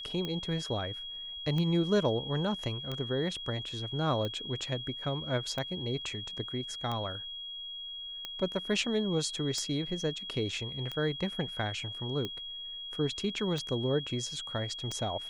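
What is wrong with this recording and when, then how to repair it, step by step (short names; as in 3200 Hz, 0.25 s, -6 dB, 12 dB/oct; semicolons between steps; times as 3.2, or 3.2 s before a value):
tick 45 rpm -22 dBFS
tone 3300 Hz -39 dBFS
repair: de-click; notch 3300 Hz, Q 30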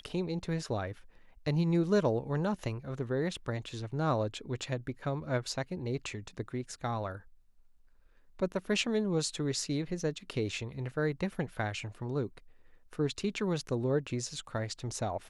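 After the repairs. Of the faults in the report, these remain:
none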